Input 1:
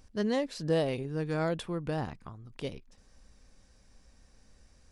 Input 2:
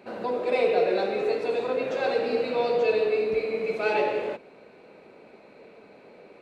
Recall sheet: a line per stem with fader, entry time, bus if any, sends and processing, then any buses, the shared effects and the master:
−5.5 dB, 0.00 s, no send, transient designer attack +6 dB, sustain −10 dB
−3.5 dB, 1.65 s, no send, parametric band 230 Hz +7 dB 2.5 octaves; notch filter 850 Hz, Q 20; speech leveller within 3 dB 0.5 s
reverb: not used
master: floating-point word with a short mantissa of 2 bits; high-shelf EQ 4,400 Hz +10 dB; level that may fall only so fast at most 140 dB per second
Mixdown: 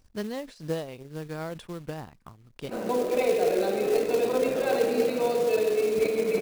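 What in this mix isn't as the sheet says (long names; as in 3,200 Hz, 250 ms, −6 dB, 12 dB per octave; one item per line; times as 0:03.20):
stem 2: entry 1.65 s → 2.65 s
master: missing high-shelf EQ 4,400 Hz +10 dB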